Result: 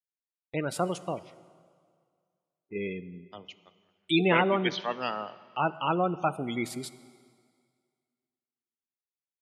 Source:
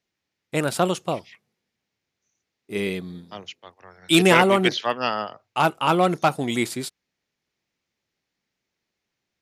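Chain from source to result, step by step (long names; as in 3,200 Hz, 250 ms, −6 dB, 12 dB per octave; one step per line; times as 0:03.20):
gate on every frequency bin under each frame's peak −20 dB strong
noise gate −41 dBFS, range −24 dB
dense smooth reverb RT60 2 s, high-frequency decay 0.9×, DRR 15.5 dB
level −7.5 dB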